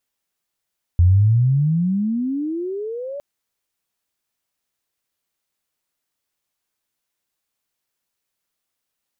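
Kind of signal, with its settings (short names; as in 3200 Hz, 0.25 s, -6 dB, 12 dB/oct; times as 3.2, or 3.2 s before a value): gliding synth tone sine, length 2.21 s, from 84.3 Hz, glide +33.5 st, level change -18 dB, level -9 dB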